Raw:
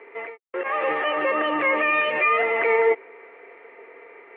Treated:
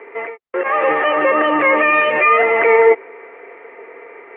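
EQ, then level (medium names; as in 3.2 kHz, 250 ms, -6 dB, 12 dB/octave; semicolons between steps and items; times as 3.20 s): low-pass 2.5 kHz 12 dB/octave; +8.5 dB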